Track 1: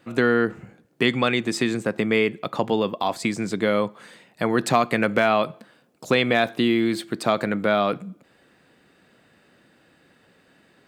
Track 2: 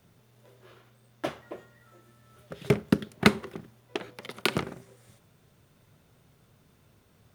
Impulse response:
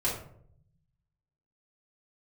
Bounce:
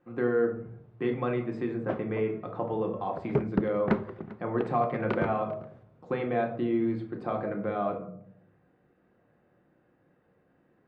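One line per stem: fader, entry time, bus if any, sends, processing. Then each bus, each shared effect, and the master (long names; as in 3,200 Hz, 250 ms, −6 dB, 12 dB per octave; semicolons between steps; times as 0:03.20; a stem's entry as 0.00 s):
−14.0 dB, 0.00 s, send −5 dB, no echo send, no processing
0.0 dB, 0.65 s, no send, echo send −20 dB, soft clipping −14.5 dBFS, distortion −9 dB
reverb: on, RT60 0.65 s, pre-delay 3 ms
echo: single-tap delay 397 ms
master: low-pass filter 1,300 Hz 12 dB per octave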